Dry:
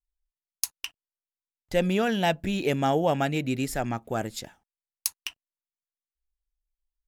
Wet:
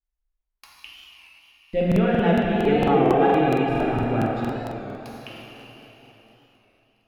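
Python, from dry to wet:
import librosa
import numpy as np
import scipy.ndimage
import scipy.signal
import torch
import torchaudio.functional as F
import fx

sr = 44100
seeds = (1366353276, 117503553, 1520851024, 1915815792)

y = fx.band_shelf(x, sr, hz=1200.0, db=-16.0, octaves=1.2, at=(0.71, 1.81))
y = fx.comb(y, sr, ms=2.5, depth=0.86, at=(2.55, 3.69))
y = fx.air_absorb(y, sr, metres=460.0)
y = fx.echo_feedback(y, sr, ms=635, feedback_pct=47, wet_db=-22.5)
y = fx.rev_plate(y, sr, seeds[0], rt60_s=3.7, hf_ratio=0.95, predelay_ms=0, drr_db=-5.5)
y = fx.buffer_crackle(y, sr, first_s=0.95, period_s=0.23, block=2048, kind='repeat')
y = fx.record_warp(y, sr, rpm=33.33, depth_cents=100.0)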